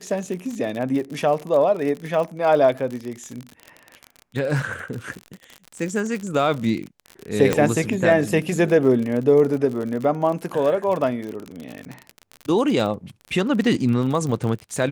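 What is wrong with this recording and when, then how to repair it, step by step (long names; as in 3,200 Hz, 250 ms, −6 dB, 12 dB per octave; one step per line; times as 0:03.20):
surface crackle 49 per second −27 dBFS
0:07.53: click −5 dBFS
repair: click removal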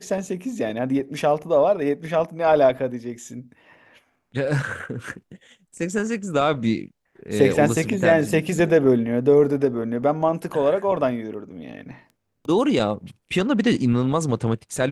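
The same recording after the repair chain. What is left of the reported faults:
none of them is left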